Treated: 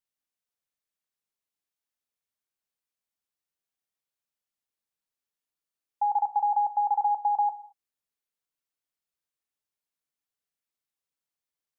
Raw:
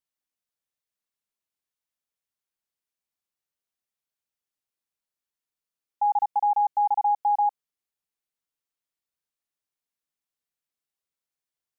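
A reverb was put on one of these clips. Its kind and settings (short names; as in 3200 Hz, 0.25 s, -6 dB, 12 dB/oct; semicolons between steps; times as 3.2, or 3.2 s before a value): non-linear reverb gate 0.25 s falling, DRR 11 dB; gain -2 dB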